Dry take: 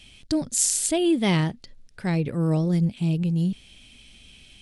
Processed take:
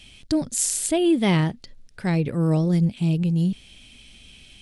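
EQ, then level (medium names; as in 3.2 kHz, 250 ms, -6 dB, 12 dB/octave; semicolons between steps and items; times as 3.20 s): dynamic bell 5.7 kHz, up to -5 dB, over -38 dBFS, Q 0.76; +2.0 dB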